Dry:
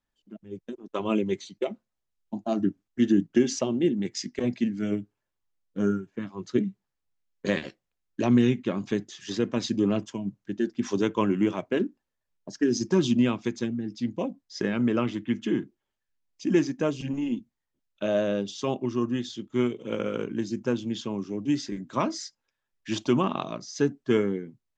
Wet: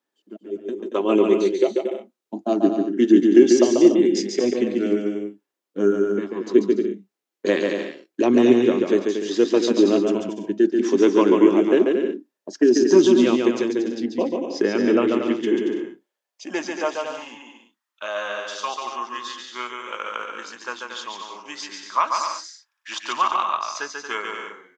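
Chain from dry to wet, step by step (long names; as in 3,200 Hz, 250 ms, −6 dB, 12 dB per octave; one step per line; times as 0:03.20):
high-pass filter sweep 350 Hz → 1,100 Hz, 0:15.20–0:17.48
bouncing-ball delay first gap 140 ms, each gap 0.65×, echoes 5
level +3.5 dB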